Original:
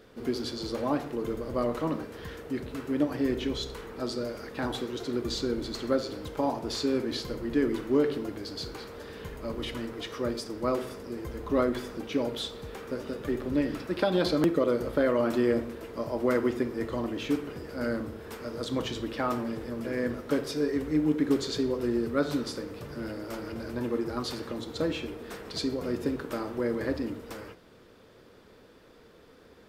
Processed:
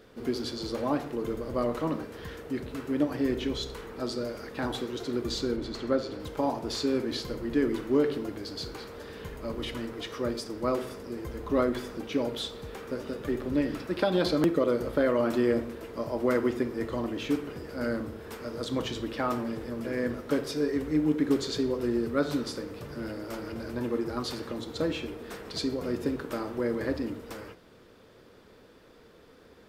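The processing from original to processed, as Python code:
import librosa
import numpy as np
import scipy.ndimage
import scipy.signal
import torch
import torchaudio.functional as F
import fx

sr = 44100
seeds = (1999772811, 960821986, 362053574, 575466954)

y = fx.high_shelf(x, sr, hz=6200.0, db=-10.5, at=(5.56, 6.2))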